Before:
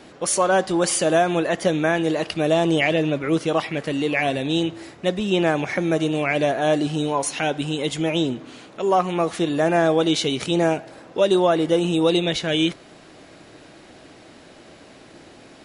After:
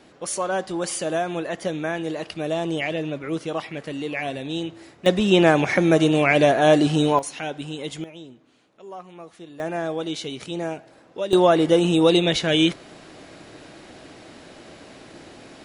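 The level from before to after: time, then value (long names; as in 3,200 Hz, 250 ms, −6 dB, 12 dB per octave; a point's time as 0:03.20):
−6.5 dB
from 0:05.06 +4 dB
from 0:07.19 −7 dB
from 0:08.04 −19.5 dB
from 0:09.60 −9 dB
from 0:11.33 +2 dB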